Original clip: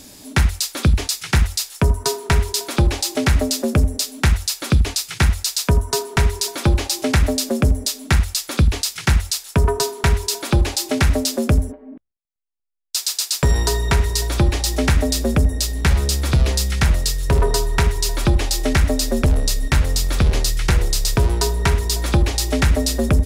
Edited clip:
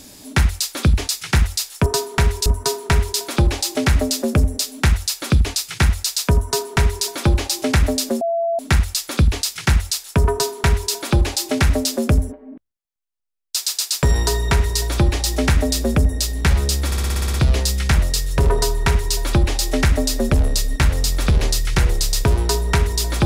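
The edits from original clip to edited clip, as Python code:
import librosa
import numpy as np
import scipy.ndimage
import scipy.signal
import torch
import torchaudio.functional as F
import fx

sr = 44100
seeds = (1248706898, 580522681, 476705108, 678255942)

y = fx.edit(x, sr, fx.bleep(start_s=7.61, length_s=0.38, hz=673.0, db=-17.0),
    fx.duplicate(start_s=9.72, length_s=0.6, to_s=1.86),
    fx.stutter(start_s=16.26, slice_s=0.06, count=9), tone=tone)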